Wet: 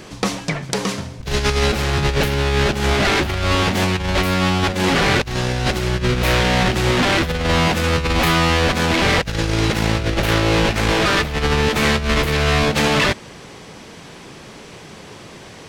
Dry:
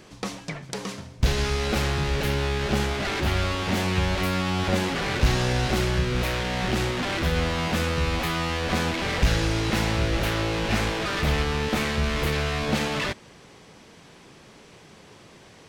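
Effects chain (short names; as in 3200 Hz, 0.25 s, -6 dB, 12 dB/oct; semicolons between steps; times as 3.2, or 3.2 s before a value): negative-ratio compressor -26 dBFS, ratio -0.5; gain +9 dB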